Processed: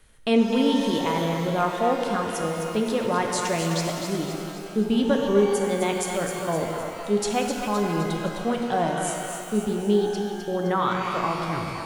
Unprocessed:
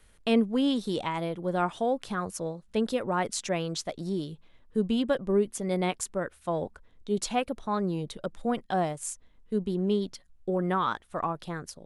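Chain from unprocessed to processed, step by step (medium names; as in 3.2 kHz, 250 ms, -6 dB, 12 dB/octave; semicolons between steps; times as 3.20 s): tape stop on the ending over 0.35 s; two-band feedback delay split 510 Hz, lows 144 ms, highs 258 ms, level -7 dB; pitch-shifted reverb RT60 2.2 s, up +12 st, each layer -8 dB, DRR 3.5 dB; trim +2.5 dB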